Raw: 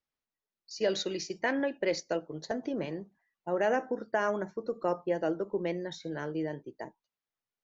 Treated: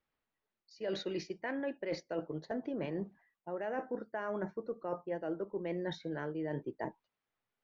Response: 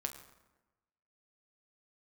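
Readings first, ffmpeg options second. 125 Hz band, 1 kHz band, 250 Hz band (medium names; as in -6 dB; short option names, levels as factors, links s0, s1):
-2.0 dB, -7.5 dB, -4.0 dB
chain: -af "lowpass=2800,areverse,acompressor=threshold=0.00891:ratio=12,areverse,volume=2.24"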